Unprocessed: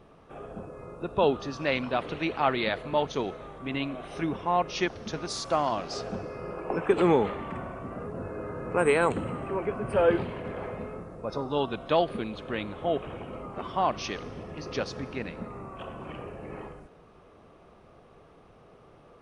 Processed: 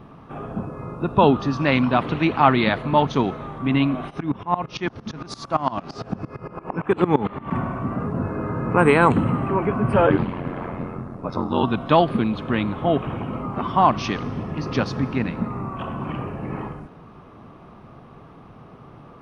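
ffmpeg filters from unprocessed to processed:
-filter_complex "[0:a]asplit=3[s0][s1][s2];[s0]afade=t=out:st=4.09:d=0.02[s3];[s1]aeval=exprs='val(0)*pow(10,-22*if(lt(mod(-8.8*n/s,1),2*abs(-8.8)/1000),1-mod(-8.8*n/s,1)/(2*abs(-8.8)/1000),(mod(-8.8*n/s,1)-2*abs(-8.8)/1000)/(1-2*abs(-8.8)/1000))/20)':c=same,afade=t=in:st=4.09:d=0.02,afade=t=out:st=7.5:d=0.02[s4];[s2]afade=t=in:st=7.5:d=0.02[s5];[s3][s4][s5]amix=inputs=3:normalize=0,asettb=1/sr,asplit=3[s6][s7][s8];[s6]atrim=end=10.064[s9];[s7]atrim=start=10.06:end=11.63,asetpts=PTS-STARTPTS,afade=t=in:d=0.004:c=qsin,afade=t=out:st=1.566:d=0.004:c=qsin,aeval=exprs='val(0)*sin(2*PI*44*n/s)':c=same[s10];[s8]atrim=start=11.626[s11];[s9][s10]acrossfade=d=0.004:c1=hsin:c2=qsin[s12];[s12][s11]acrossfade=d=0.004:c1=qsin:c2=hsin,equalizer=f=125:t=o:w=1:g=8,equalizer=f=250:t=o:w=1:g=7,equalizer=f=500:t=o:w=1:g=-5,equalizer=f=1000:t=o:w=1:g=6,equalizer=f=8000:t=o:w=1:g=-8,volume=2.11"

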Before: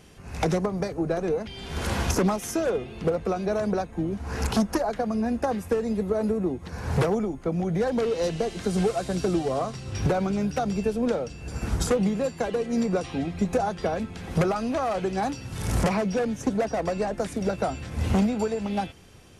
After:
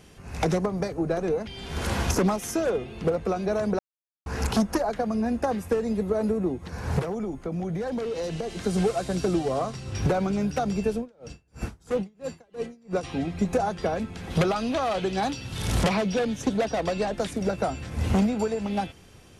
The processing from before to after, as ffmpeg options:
-filter_complex "[0:a]asettb=1/sr,asplit=3[s0][s1][s2];[s0]atrim=end=6.994[s3];[s1]atrim=start=6.99:end=8.54,asetpts=PTS-STARTPTS,afade=t=in:d=0.004:c=qsin,afade=t=out:st=1.546:d=0.004:c=qsin,acompressor=threshold=0.0501:ratio=6:attack=3.2:release=140:knee=1:detection=peak[s4];[s2]atrim=start=8.536[s5];[s3][s4]acrossfade=d=0.004:c1=hsin:c2=qsin[s6];[s6][s5]acrossfade=d=0.004:c1=qsin:c2=hsin,asettb=1/sr,asplit=3[s7][s8][s9];[s7]atrim=end=10.974[s10];[s8]atrim=start=10.97:end=13.03,asetpts=PTS-STARTPTS,afade=t=in:d=0.004:c=qsin,afade=t=out:st=2.056:d=0.004:c=qsin,aeval=exprs='val(0)*pow(10,-35*(0.5-0.5*cos(2*PI*3*n/s))/20)':c=same[s11];[s9]atrim=start=13.026[s12];[s10][s11]acrossfade=d=0.004:c1=hsin:c2=qsin[s13];[s13][s12]acrossfade=d=0.004:c1=qsin:c2=hsin,asettb=1/sr,asplit=3[s14][s15][s16];[s14]atrim=end=14.304[s17];[s15]atrim=start=14.3:end=17.31,asetpts=PTS-STARTPTS,afade=t=in:d=0.004:c=qsin,afade=t=out:st=3.006:d=0.004:c=qsin,equalizer=f=3500:t=o:w=0.83:g=9[s18];[s16]atrim=start=17.306[s19];[s17][s18]acrossfade=d=0.004:c1=hsin:c2=qsin[s20];[s20][s19]acrossfade=d=0.004:c1=qsin:c2=hsin,asplit=3[s21][s22][s23];[s21]atrim=end=3.79,asetpts=PTS-STARTPTS,afade=t=out:st=3.786:d=0.004:c=hsin[s24];[s22]atrim=start=3.79:end=4.26,asetpts=PTS-STARTPTS,volume=0[s25];[s23]atrim=start=4.26,asetpts=PTS-STARTPTS,afade=t=in:d=0.004:c=hsin[s26];[s24][s25][s26]concat=n=3:v=0:a=1"

